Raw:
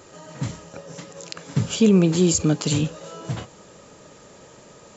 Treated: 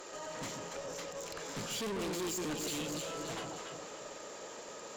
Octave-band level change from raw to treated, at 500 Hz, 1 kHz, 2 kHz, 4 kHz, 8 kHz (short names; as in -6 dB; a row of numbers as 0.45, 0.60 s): -13.5 dB, -3.5 dB, -6.0 dB, -9.0 dB, n/a